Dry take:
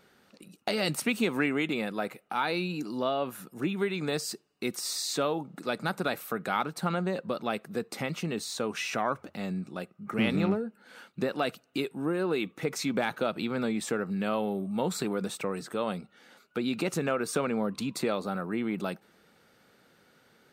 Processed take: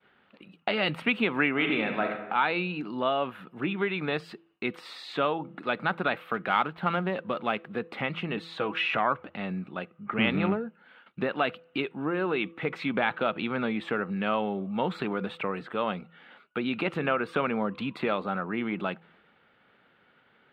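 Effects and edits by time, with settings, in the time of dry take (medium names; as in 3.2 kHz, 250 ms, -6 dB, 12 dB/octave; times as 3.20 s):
1.50–2.11 s: reverb throw, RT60 1.1 s, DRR 3 dB
6.34–7.73 s: dead-time distortion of 0.079 ms
8.36–8.97 s: comb 6.2 ms
10.46–11.06 s: fade out equal-power, to -15 dB
whole clip: de-hum 166.9 Hz, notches 3; expander -58 dBFS; FFT filter 480 Hz 0 dB, 1 kHz +5 dB, 3.2 kHz +5 dB, 6 kHz -26 dB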